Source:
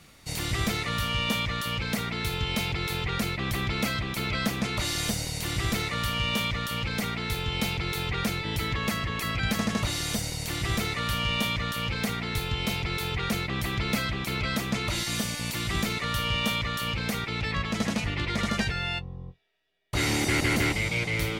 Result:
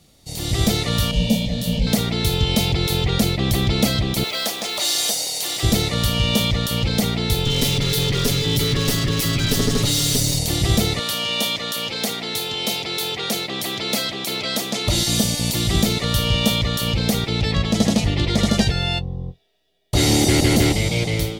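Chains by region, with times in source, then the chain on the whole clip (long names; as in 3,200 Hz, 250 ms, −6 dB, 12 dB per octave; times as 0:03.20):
0:01.11–0:01.87: low-shelf EQ 340 Hz +10.5 dB + phaser with its sweep stopped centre 340 Hz, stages 6 + micro pitch shift up and down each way 51 cents
0:04.24–0:05.63: high-pass filter 640 Hz + floating-point word with a short mantissa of 2 bits
0:07.45–0:10.39: lower of the sound and its delayed copy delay 7.1 ms + parametric band 730 Hz −10.5 dB 0.53 octaves + envelope flattener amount 50%
0:10.99–0:14.87: high-pass filter 230 Hz + low-shelf EQ 420 Hz −8 dB
whole clip: flat-topped bell 1,600 Hz −10 dB; notch filter 1,500 Hz, Q 17; automatic gain control gain up to 11.5 dB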